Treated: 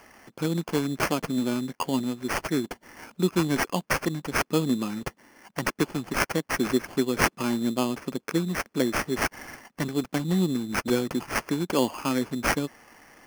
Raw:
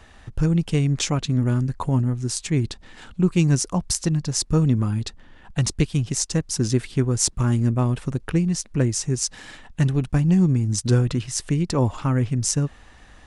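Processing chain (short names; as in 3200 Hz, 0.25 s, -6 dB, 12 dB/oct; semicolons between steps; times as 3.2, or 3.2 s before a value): HPF 220 Hz 24 dB/oct; sample-rate reducer 3800 Hz, jitter 0%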